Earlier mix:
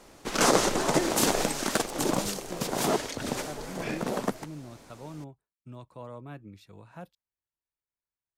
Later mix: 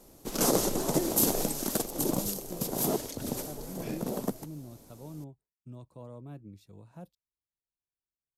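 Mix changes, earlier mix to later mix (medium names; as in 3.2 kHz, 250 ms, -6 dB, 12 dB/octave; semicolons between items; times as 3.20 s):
background: add peaking EQ 12 kHz +13.5 dB 0.24 oct; master: add peaking EQ 1.8 kHz -13.5 dB 2.4 oct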